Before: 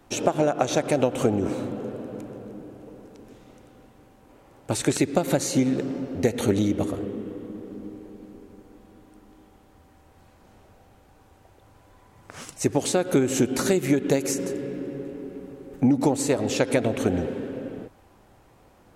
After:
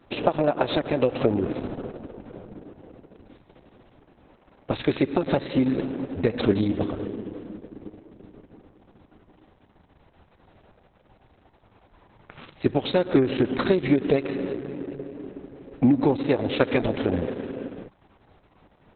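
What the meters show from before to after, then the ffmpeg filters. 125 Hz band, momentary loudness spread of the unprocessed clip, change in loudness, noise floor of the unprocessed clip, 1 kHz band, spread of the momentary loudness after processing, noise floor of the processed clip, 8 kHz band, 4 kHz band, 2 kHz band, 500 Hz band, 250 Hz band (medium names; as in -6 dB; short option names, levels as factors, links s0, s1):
-0.5 dB, 18 LU, 0.0 dB, -56 dBFS, -0.5 dB, 19 LU, -60 dBFS, under -40 dB, -1.0 dB, +0.5 dB, 0.0 dB, 0.0 dB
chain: -filter_complex "[0:a]asplit=2[s0][s1];[s1]aeval=exprs='sgn(val(0))*max(abs(val(0))-0.0224,0)':c=same,volume=0.335[s2];[s0][s2]amix=inputs=2:normalize=0,volume=0.891" -ar 48000 -c:a libopus -b:a 6k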